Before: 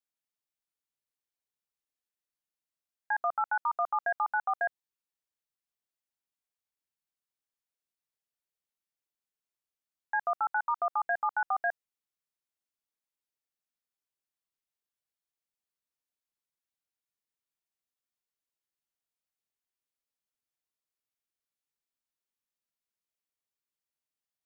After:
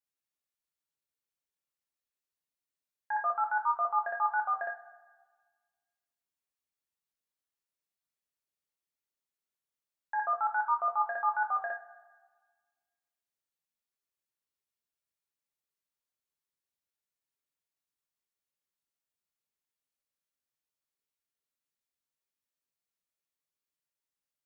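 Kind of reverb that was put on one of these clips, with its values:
coupled-rooms reverb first 0.32 s, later 1.5 s, DRR 0.5 dB
level −4 dB

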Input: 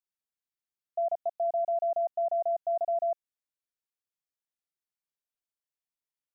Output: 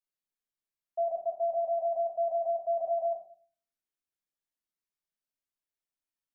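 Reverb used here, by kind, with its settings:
rectangular room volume 330 cubic metres, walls furnished, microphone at 2.7 metres
level −6.5 dB

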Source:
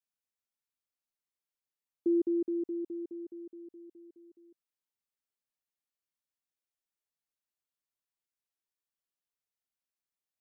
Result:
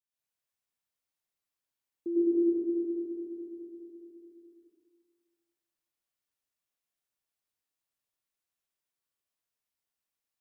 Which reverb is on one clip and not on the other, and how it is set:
dense smooth reverb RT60 1.6 s, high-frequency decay 0.9×, pre-delay 85 ms, DRR −9.5 dB
level −6.5 dB

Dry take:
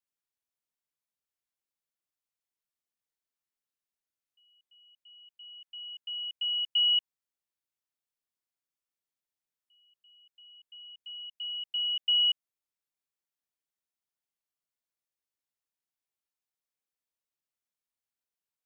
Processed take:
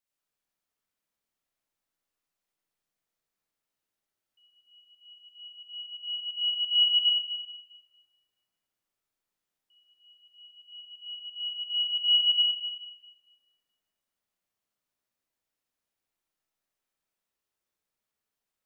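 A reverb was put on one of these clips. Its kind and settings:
comb and all-pass reverb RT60 3.4 s, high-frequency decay 0.3×, pre-delay 25 ms, DRR −5.5 dB
level +1 dB

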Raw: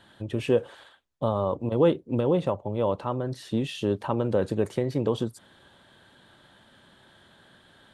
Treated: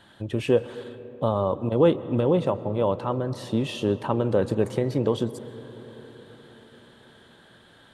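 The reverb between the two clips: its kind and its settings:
comb and all-pass reverb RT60 4.8 s, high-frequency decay 0.3×, pre-delay 90 ms, DRR 15 dB
level +2 dB

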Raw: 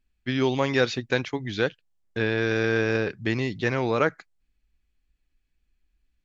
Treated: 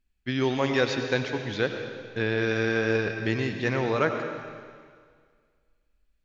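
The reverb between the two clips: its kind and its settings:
comb and all-pass reverb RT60 1.9 s, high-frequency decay 1×, pre-delay 55 ms, DRR 5.5 dB
level −2 dB

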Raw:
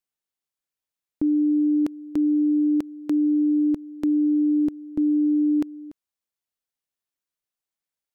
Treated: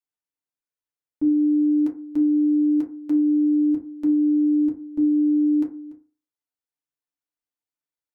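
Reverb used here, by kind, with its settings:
feedback delay network reverb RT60 0.36 s, low-frequency decay 0.95×, high-frequency decay 0.35×, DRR −2.5 dB
level −9.5 dB

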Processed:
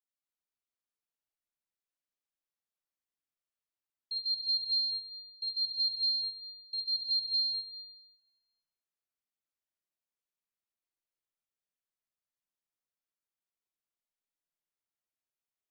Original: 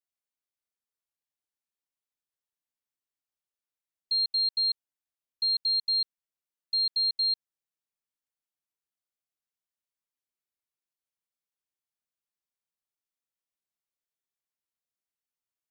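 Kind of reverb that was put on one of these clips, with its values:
comb and all-pass reverb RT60 2.7 s, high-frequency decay 0.5×, pre-delay 25 ms, DRR −5 dB
level −9.5 dB

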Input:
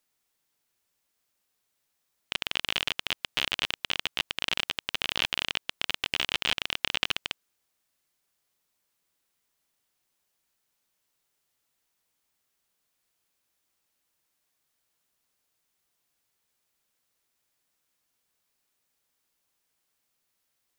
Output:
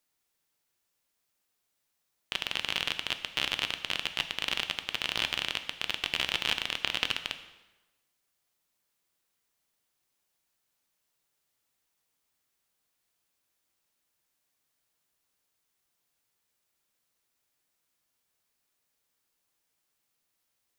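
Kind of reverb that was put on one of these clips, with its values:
dense smooth reverb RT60 1.1 s, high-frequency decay 0.85×, DRR 8.5 dB
level −2 dB

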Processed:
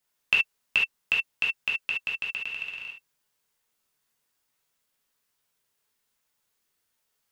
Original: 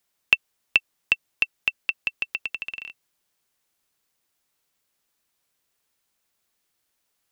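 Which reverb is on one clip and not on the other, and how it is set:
reverb whose tail is shaped and stops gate 90 ms flat, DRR −4 dB
level −6.5 dB

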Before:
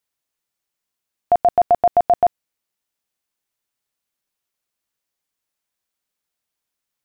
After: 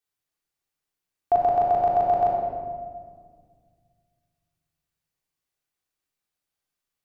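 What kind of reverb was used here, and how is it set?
rectangular room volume 2,500 cubic metres, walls mixed, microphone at 3.6 metres
level −8.5 dB

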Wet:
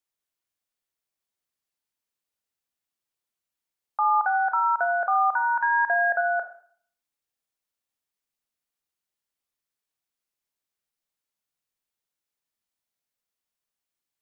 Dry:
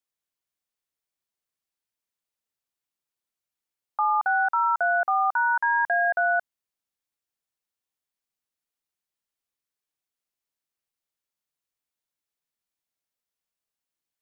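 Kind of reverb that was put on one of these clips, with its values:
four-comb reverb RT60 0.54 s, combs from 26 ms, DRR 7.5 dB

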